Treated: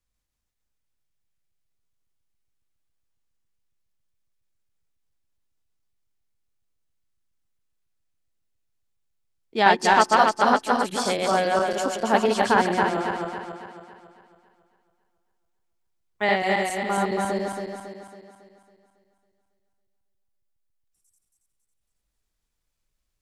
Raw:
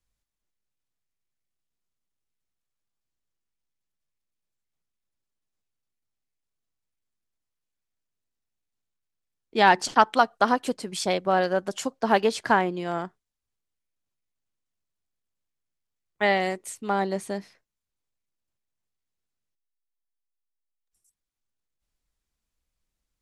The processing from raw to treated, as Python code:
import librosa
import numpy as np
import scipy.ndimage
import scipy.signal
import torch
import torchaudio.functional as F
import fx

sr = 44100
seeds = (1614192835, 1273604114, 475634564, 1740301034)

y = fx.reverse_delay_fb(x, sr, ms=138, feedback_pct=68, wet_db=-1.0)
y = y * 10.0 ** (-1.0 / 20.0)